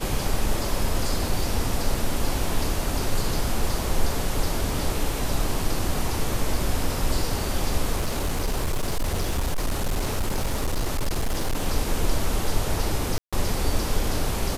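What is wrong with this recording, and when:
7.96–11.67 clipped -20 dBFS
13.18–13.33 gap 0.146 s

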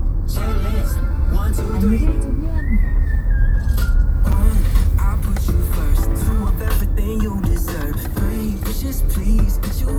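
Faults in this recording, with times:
4.32–4.33 gap 5.3 ms

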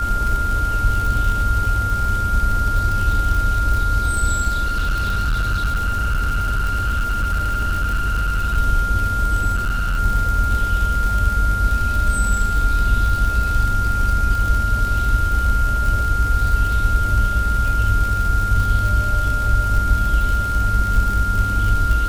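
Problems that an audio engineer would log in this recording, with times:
crackle 79/s -22 dBFS
tone 1400 Hz -21 dBFS
4.63–8.58 clipped -15.5 dBFS
9.55–10 clipped -16.5 dBFS

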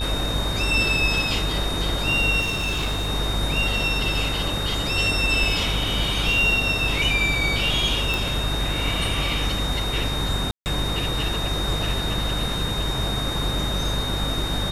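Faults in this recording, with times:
buzz 50 Hz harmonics 38 -28 dBFS
tone 3700 Hz -28 dBFS
2.4–3.09 clipped -20.5 dBFS
8.14 pop
10.51–10.66 gap 0.149 s

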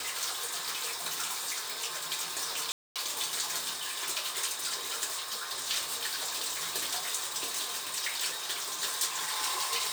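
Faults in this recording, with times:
2.72–2.96 gap 0.237 s

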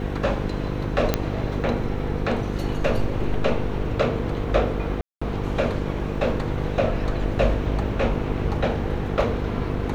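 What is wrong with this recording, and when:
buzz 50 Hz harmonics 10 -28 dBFS
1.14 pop -5 dBFS
5.01–5.21 gap 0.205 s

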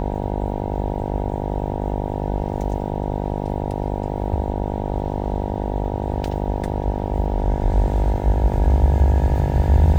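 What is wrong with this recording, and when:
buzz 50 Hz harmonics 19 -25 dBFS

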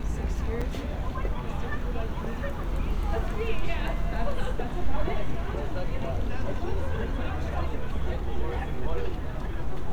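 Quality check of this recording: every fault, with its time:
0.61–0.62 gap 5.5 ms

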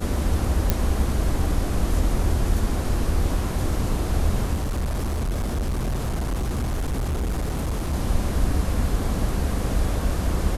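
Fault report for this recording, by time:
0.7 pop -5 dBFS
4.53–7.94 clipped -21.5 dBFS

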